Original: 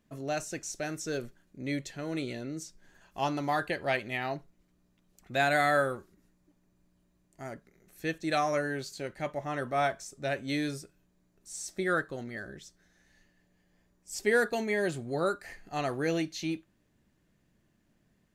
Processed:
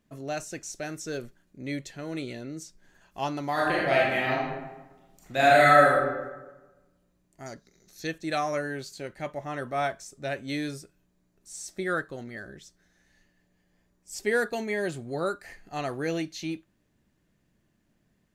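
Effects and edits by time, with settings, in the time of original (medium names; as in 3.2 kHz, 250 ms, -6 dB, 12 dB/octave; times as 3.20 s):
3.52–5.94 s: reverb throw, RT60 1.2 s, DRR -6 dB
7.46–8.07 s: high-order bell 5 kHz +14 dB 1.1 oct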